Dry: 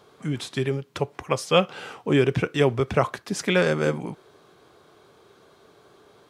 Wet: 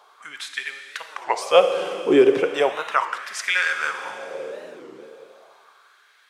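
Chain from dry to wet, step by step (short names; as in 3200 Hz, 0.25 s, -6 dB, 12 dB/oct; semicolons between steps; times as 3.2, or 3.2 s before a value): Schroeder reverb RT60 3.3 s, combs from 31 ms, DRR 6.5 dB; LFO high-pass sine 0.36 Hz 360–1800 Hz; record warp 33 1/3 rpm, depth 250 cents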